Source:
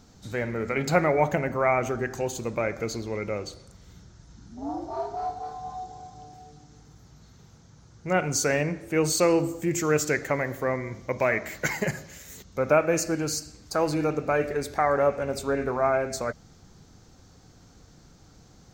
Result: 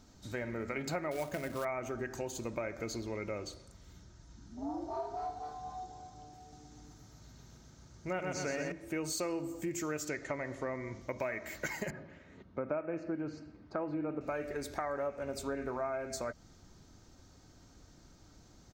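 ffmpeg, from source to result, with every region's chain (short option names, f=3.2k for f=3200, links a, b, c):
-filter_complex "[0:a]asettb=1/sr,asplit=3[a][b][c];[a]atrim=end=1.114[d];[b]atrim=start=1.11:end=1.65,asetpts=PTS-STARTPTS,afade=t=in:d=0.004:c=qsin,afade=t=out:st=0.536:d=0.004:c=qsin,acrusher=bits=3:mode=log:mix=0:aa=0.000001,bandreject=f=870:w=5.6[e];[c]atrim=start=1.646[f];[d][e]acrossfade=d=0.004:c1=hsin:c2=qsin[g];[g][f]acrossfade=d=0.004:c1=qsin:c2=hsin,asettb=1/sr,asplit=3[h][i][j];[h]atrim=end=6.404[k];[i]atrim=start=6.4:end=8.72,asetpts=PTS-STARTPTS,afade=t=in:d=0.004:c=qsin,afade=t=out:st=2.316:d=0.004:c=qsin,acrossover=split=5300[l][m];[m]acompressor=threshold=-53dB:ratio=4:attack=1:release=60[n];[l][n]amix=inputs=2:normalize=0,highshelf=f=7.1k:g=4,aecho=1:1:125|250|375|500|625|750|875|1000:0.708|0.389|0.214|0.118|0.0648|0.0356|0.0196|0.0108,atrim=end_sample=102312[o];[j]atrim=start=8.716[p];[k][o]acrossfade=d=0.004:c1=hsin:c2=qsin[q];[q][p]acrossfade=d=0.004:c1=qsin:c2=hsin,asettb=1/sr,asplit=3[r][s][t];[r]atrim=end=10.084[u];[s]atrim=start=10.08:end=11.01,asetpts=PTS-STARTPTS,afade=t=in:d=0.004:c=qsin,afade=t=out:st=0.926:d=0.004:c=qsin,lowpass=f=8.1k:w=0.5412,lowpass=f=8.1k:w=1.3066,bandreject=f=1.6k:w=20[v];[t]atrim=start=11.006[w];[u][v]acrossfade=d=0.004:c1=hsin:c2=qsin[x];[x][w]acrossfade=d=0.004:c1=qsin:c2=hsin,asettb=1/sr,asplit=3[y][z][aa];[y]atrim=end=11.904[ab];[z]atrim=start=11.9:end=14.21,asetpts=PTS-STARTPTS,afade=t=in:d=0.004:c=qsin,afade=t=out:st=2.306:d=0.004:c=qsin,highpass=190,lowpass=2.2k,aemphasis=mode=reproduction:type=bsi[ac];[aa]atrim=start=14.206[ad];[ab][ac]acrossfade=d=0.004:c1=hsin:c2=qsin[ae];[ae][ad]acrossfade=d=0.004:c1=qsin:c2=hsin,aecho=1:1:3.2:0.31,acompressor=threshold=-29dB:ratio=4,volume=-5.5dB"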